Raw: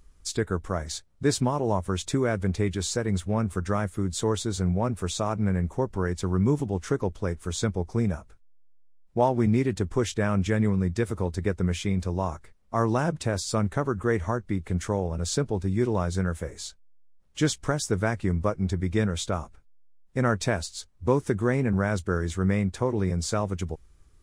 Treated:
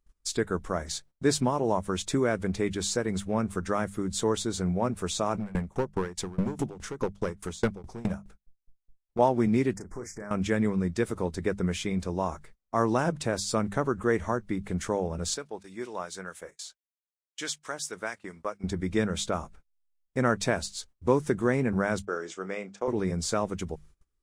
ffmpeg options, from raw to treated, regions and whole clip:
-filter_complex "[0:a]asettb=1/sr,asplit=3[a][b][c];[a]atrim=end=5.344[d];[b]atrim=start=5.34:end=9.19,asetpts=PTS-STARTPTS,afade=t=in:d=0.004:c=qsin,afade=t=out:st=3.846:d=0.004:c=qsin,acontrast=70,asoftclip=type=hard:threshold=-14.5dB,aeval=exprs='val(0)*pow(10,-25*if(lt(mod(4.8*n/s,1),2*abs(4.8)/1000),1-mod(4.8*n/s,1)/(2*abs(4.8)/1000),(mod(4.8*n/s,1)-2*abs(4.8)/1000)/(1-2*abs(4.8)/1000))/20)':c=same[e];[c]atrim=start=9.186[f];[d][e]acrossfade=d=0.004:c1=hsin:c2=qsin[g];[g][f]acrossfade=d=0.004:c1=qsin:c2=hsin,asettb=1/sr,asplit=3[h][i][j];[h]atrim=end=9.764[k];[i]atrim=start=9.76:end=10.31,asetpts=PTS-STARTPTS,afade=t=in:d=0.004:c=qsin,afade=t=out:st=0.546:d=0.004:c=qsin,acompressor=threshold=-36dB:ratio=4:attack=3.2:release=140:knee=1:detection=peak,asuperstop=centerf=3300:order=12:qfactor=1.2,asplit=2[l][m];[m]adelay=34,volume=-8.5dB[n];[l][n]amix=inputs=2:normalize=0,atrim=end_sample=24255[o];[j]atrim=start=10.306[p];[k][o]acrossfade=d=0.004:c1=hsin:c2=qsin[q];[q][p]acrossfade=d=0.004:c1=qsin:c2=hsin,asettb=1/sr,asplit=3[r][s][t];[r]atrim=end=15.344[u];[s]atrim=start=15.34:end=18.64,asetpts=PTS-STARTPTS,afade=t=in:d=0.004:c=qsin,afade=t=out:st=3.296:d=0.004:c=qsin,highpass=f=1k:p=1,agate=range=-11dB:threshold=-49dB:ratio=16:release=100:detection=peak,acrossover=split=1700[v][w];[v]aeval=exprs='val(0)*(1-0.5/2+0.5/2*cos(2*PI*4.5*n/s))':c=same[x];[w]aeval=exprs='val(0)*(1-0.5/2-0.5/2*cos(2*PI*4.5*n/s))':c=same[y];[x][y]amix=inputs=2:normalize=0[z];[t]atrim=start=18.636[aa];[u][z]acrossfade=d=0.004:c1=hsin:c2=qsin[ab];[ab][aa]acrossfade=d=0.004:c1=qsin:c2=hsin,asettb=1/sr,asplit=3[ac][ad][ae];[ac]atrim=end=22.054[af];[ad]atrim=start=22.05:end=22.88,asetpts=PTS-STARTPTS,afade=t=in:d=0.004:c=qsin,afade=t=out:st=0.826:d=0.004:c=qsin,agate=range=-33dB:threshold=-33dB:ratio=3:release=100:detection=peak,highpass=450,equalizer=f=990:t=q:w=4:g=-6,equalizer=f=1.8k:t=q:w=4:g=-6,equalizer=f=4k:t=q:w=4:g=-8,lowpass=f=7.2k:w=0.5412,lowpass=f=7.2k:w=1.3066,asplit=2[ag][ah];[ah]adelay=31,volume=-13dB[ai];[ag][ai]amix=inputs=2:normalize=0,atrim=end_sample=36603[aj];[ae]atrim=start=22.876[ak];[af][aj]acrossfade=d=0.004:c1=hsin:c2=qsin[al];[al][ak]acrossfade=d=0.004:c1=qsin:c2=hsin,bandreject=f=50:t=h:w=6,bandreject=f=100:t=h:w=6,bandreject=f=150:t=h:w=6,bandreject=f=200:t=h:w=6,agate=range=-21dB:threshold=-49dB:ratio=16:detection=peak,equalizer=f=96:w=1.9:g=-9"

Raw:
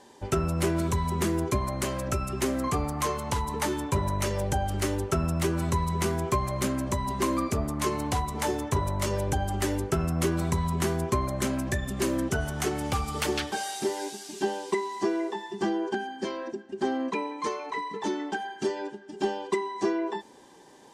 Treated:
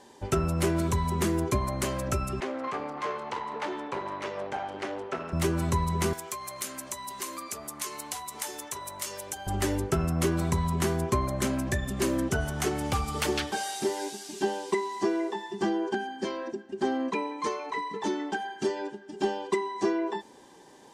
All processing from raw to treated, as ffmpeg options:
-filter_complex "[0:a]asettb=1/sr,asplit=3[a][b][c];[a]atrim=end=2.404[d];[b]atrim=start=2.4:end=5.33,asetpts=PTS-STARTPTS,afade=t=in:d=0.004:c=qsin,afade=t=out:st=2.926:d=0.004:c=qsin,aeval=exprs='clip(val(0),-1,0.0211)':c=same,highpass=350,lowpass=3.1k,aecho=1:1:326:0.224,atrim=end_sample=129213[e];[c]atrim=start=5.326[f];[d][e]acrossfade=d=0.004:c1=hsin:c2=qsin[g];[g][f]acrossfade=d=0.004:c1=qsin:c2=hsin,asettb=1/sr,asplit=3[h][i][j];[h]atrim=end=6.134[k];[i]atrim=start=6.13:end=9.47,asetpts=PTS-STARTPTS,afade=t=in:d=0.004:c=qsin,afade=t=out:st=3.336:d=0.004:c=qsin,highpass=f=1.3k:p=1,acompressor=threshold=-38dB:ratio=2:attack=3.2:release=140:knee=1:detection=peak,aemphasis=mode=production:type=cd[l];[j]atrim=start=9.466[m];[k][l]acrossfade=d=0.004:c1=hsin:c2=qsin[n];[n][m]acrossfade=d=0.004:c1=qsin:c2=hsin"

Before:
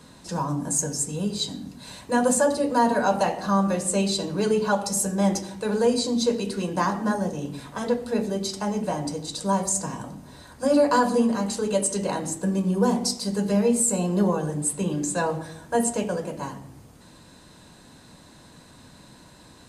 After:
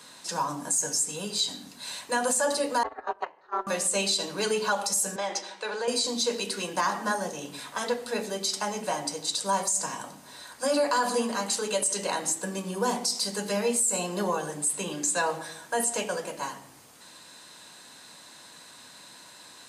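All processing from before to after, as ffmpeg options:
-filter_complex "[0:a]asettb=1/sr,asplit=3[a][b][c];[a]atrim=end=2.834[d];[b]atrim=start=2.83:end=3.67,asetpts=PTS-STARTPTS,afade=t=in:d=0.004:c=qsin,afade=t=out:st=0.836:d=0.004:c=qsin,agate=range=-21dB:threshold=-20dB:ratio=16:release=100:detection=peak,highpass=210,lowpass=2.1k,aeval=exprs='val(0)*sin(2*PI*180*n/s)':c=same[e];[c]atrim=start=3.666[f];[d][e]acrossfade=d=0.004:c1=hsin:c2=qsin[g];[g][f]acrossfade=d=0.004:c1=qsin:c2=hsin,asettb=1/sr,asplit=3[h][i][j];[h]atrim=end=5.164[k];[i]atrim=start=5.16:end=5.88,asetpts=PTS-STARTPTS,afade=t=in:d=0.004:c=qsin,afade=t=out:st=0.716:d=0.004:c=qsin,highpass=410,lowpass=4.6k,acompressor=threshold=-25dB:ratio=2.5:attack=3.2:release=140:knee=1:detection=peak[l];[j]atrim=start=5.876[m];[k][l]acrossfade=d=0.004:c1=hsin:c2=qsin[n];[n][m]acrossfade=d=0.004:c1=qsin:c2=hsin,highpass=f=1.5k:p=1,acontrast=55,alimiter=limit=-16.5dB:level=0:latency=1:release=58"

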